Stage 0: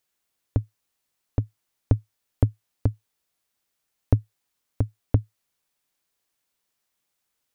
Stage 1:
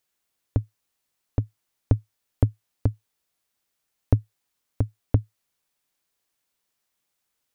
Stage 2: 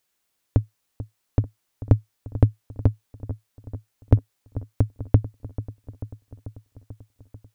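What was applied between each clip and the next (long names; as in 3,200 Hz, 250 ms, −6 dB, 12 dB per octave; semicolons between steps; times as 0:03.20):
no processing that can be heard
delay with a low-pass on its return 440 ms, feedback 68%, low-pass 1,400 Hz, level −14.5 dB; level +3.5 dB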